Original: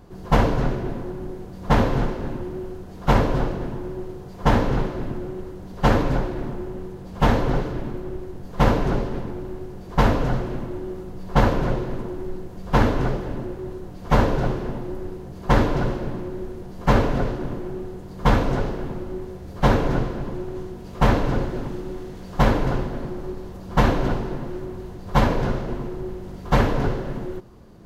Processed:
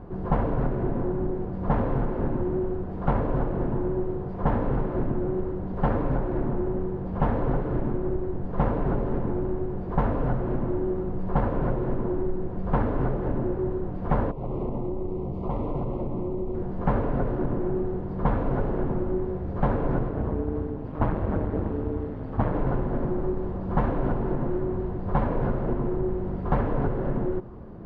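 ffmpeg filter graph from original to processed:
ffmpeg -i in.wav -filter_complex "[0:a]asettb=1/sr,asplit=3[link_01][link_02][link_03];[link_01]atrim=end=14.314[link_04];[link_02]atrim=start=14.31:end=16.55,asetpts=PTS-STARTPTS,afade=type=in:duration=0.004:curve=qsin,afade=type=out:start_time=2.236:duration=0.004:curve=qsin,asuperstop=centerf=1600:order=4:qfactor=1.7,acompressor=threshold=-30dB:ratio=8:attack=3.2:release=140:knee=1:detection=peak[link_05];[link_03]atrim=start=16.546[link_06];[link_04][link_05]acrossfade=duration=0.004:curve1=hsin:curve2=qsin[link_07];[link_07][link_06]acrossfade=duration=0.004:curve1=qsin:curve2=hsin,asettb=1/sr,asplit=3[link_08][link_09][link_10];[link_08]atrim=end=20.094[link_11];[link_09]atrim=start=20.09:end=22.54,asetpts=PTS-STARTPTS,afade=type=in:duration=0.004:curve=qsin,afade=type=out:start_time=2.446:duration=0.004:curve=qsin,aeval=exprs='val(0)*sin(2*PI*74*n/s)':channel_layout=same,lowpass=5600[link_12];[link_10]atrim=start=22.536[link_13];[link_11][link_12]acrossfade=duration=0.004:curve1=hsin:curve2=qsin[link_14];[link_14][link_13]acrossfade=duration=0.004:curve1=qsin:curve2=hsin,lowpass=1300,acompressor=threshold=-27dB:ratio=6,volume=6dB" out.wav

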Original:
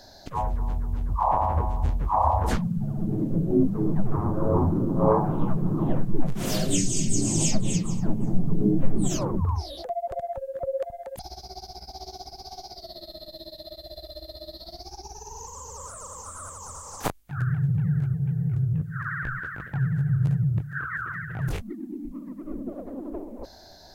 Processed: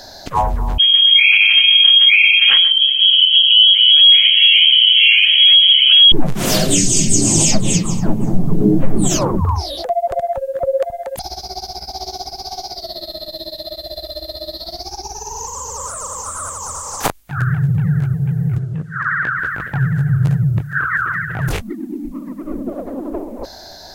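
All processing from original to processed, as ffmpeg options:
ffmpeg -i in.wav -filter_complex "[0:a]asettb=1/sr,asplit=3[link_01][link_02][link_03];[link_01]atrim=end=0.784[link_04];[link_02]atrim=start=0.78:end=6.12,asetpts=PTS-STARTPTS,afade=type=in:duration=0.004:curve=qsin,afade=type=out:start_time=5.336:duration=0.004:curve=qsin,aecho=1:1:3.6:0.37,atrim=end_sample=235494,aecho=1:1:133:0.158,atrim=end_sample=235494,lowpass=frequency=2800:width_type=q:width=0.5098,lowpass=frequency=2800:width_type=q:width=0.6013,lowpass=frequency=2800:width_type=q:width=0.9,lowpass=frequency=2800:width_type=q:width=2.563,afreqshift=-3300[link_05];[link_03]atrim=start=6.116[link_06];[link_04][link_05]acrossfade=duration=0.004:curve1=hsin:curve2=qsin[link_07];[link_07][link_06]acrossfade=duration=0.004:curve1=qsin:curve2=hsin,asettb=1/sr,asplit=3[link_08][link_09][link_10];[link_08]atrim=end=18.584[link_11];[link_09]atrim=start=18.58:end=19.39,asetpts=PTS-STARTPTS,afade=type=in:duration=0.004:curve=qsin,afade=type=out:start_time=0.806:duration=0.004:curve=qsin,highpass=180,lowpass=7400,bandreject=frequency=2500:width=25[link_12];[link_10]atrim=start=19.386[link_13];[link_11][link_12]acrossfade=duration=0.004:curve1=hsin:curve2=qsin[link_14];[link_14][link_13]acrossfade=duration=0.004:curve1=qsin:curve2=hsin,lowshelf=frequency=440:gain=-6.5,alimiter=level_in=15dB:limit=-1dB:release=50:level=0:latency=1,volume=-1dB" out.wav

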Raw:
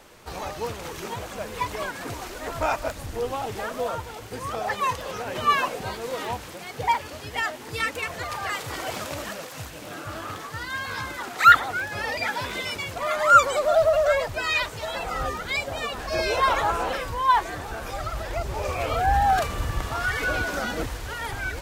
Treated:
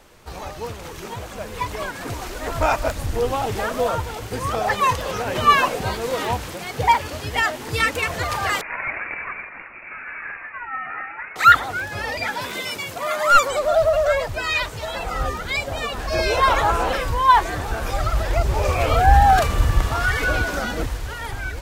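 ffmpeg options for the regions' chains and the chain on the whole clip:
ffmpeg -i in.wav -filter_complex "[0:a]asettb=1/sr,asplit=3[link_01][link_02][link_03];[link_01]atrim=end=8.614[link_04];[link_02]atrim=start=8.61:end=11.36,asetpts=PTS-STARTPTS,afade=type=in:duration=0.004:curve=qsin,afade=type=out:start_time=2.746:duration=0.004:curve=qsin,highpass=540,adynamicsmooth=sensitivity=7:basefreq=1900,lowpass=frequency=2500:width_type=q:width=0.5098,lowpass=frequency=2500:width_type=q:width=0.6013,lowpass=frequency=2500:width_type=q:width=0.9,lowpass=frequency=2500:width_type=q:width=2.563,afreqshift=-2900[link_05];[link_03]atrim=start=11.356[link_06];[link_04][link_05]acrossfade=duration=0.004:curve1=hsin:curve2=qsin[link_07];[link_07][link_06]acrossfade=duration=0.004:curve1=qsin:curve2=hsin,asettb=1/sr,asplit=3[link_08][link_09][link_10];[link_08]atrim=end=12.414[link_11];[link_09]atrim=start=12.41:end=13.48,asetpts=PTS-STARTPTS,afade=type=in:duration=0.004:curve=qsin,afade=type=out:start_time=1.066:duration=0.004:curve=qsin,highpass=150,highshelf=frequency=8800:gain=7,aeval=exprs='clip(val(0),-1,0.224)':channel_layout=same[link_12];[link_10]atrim=start=13.476[link_13];[link_11][link_12]acrossfade=duration=0.004:curve1=hsin:curve2=qsin[link_14];[link_14][link_13]acrossfade=duration=0.004:curve1=qsin:curve2=hsin,dynaudnorm=framelen=950:gausssize=5:maxgain=10dB,lowshelf=frequency=92:gain=8,volume=-1dB" out.wav

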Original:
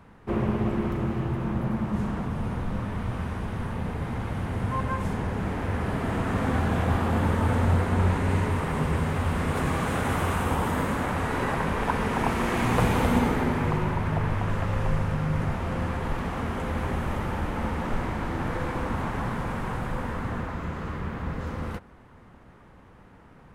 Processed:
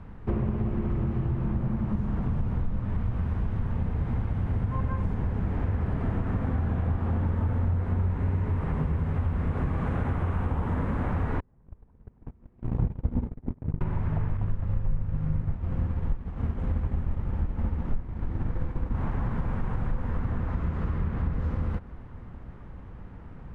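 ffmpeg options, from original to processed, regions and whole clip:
ffmpeg -i in.wav -filter_complex "[0:a]asettb=1/sr,asplit=3[link_01][link_02][link_03];[link_01]atrim=end=11.404[link_04];[link_02]atrim=start=11.4:end=13.81,asetpts=PTS-STARTPTS,afade=type=in:duration=0.004:curve=qsin,afade=type=out:start_time=2.406:duration=0.004:curve=qsin,tiltshelf=frequency=780:gain=8.5,agate=range=-47dB:threshold=-15dB:ratio=16:release=100:detection=peak[link_05];[link_03]atrim=start=13.806[link_06];[link_04][link_05]acrossfade=duration=0.004:curve1=hsin:curve2=qsin[link_07];[link_07][link_06]acrossfade=duration=0.004:curve1=qsin:curve2=hsin,asettb=1/sr,asplit=3[link_08][link_09][link_10];[link_08]atrim=end=14.374[link_11];[link_09]atrim=start=14.37:end=18.95,asetpts=PTS-STARTPTS,afade=type=in:duration=0.004:curve=qsin,afade=type=out:start_time=4.576:duration=0.004:curve=qsin,agate=range=-33dB:threshold=-23dB:ratio=3:release=100:detection=peak,lowshelf=frequency=380:gain=6[link_12];[link_10]atrim=start=18.946[link_13];[link_11][link_12]acrossfade=duration=0.004:curve1=hsin:curve2=qsin[link_14];[link_14][link_13]acrossfade=duration=0.004:curve1=qsin:curve2=hsin,acrossover=split=2500[link_15][link_16];[link_16]acompressor=threshold=-50dB:ratio=4:attack=1:release=60[link_17];[link_15][link_17]amix=inputs=2:normalize=0,aemphasis=mode=reproduction:type=bsi,acompressor=threshold=-24dB:ratio=6" out.wav

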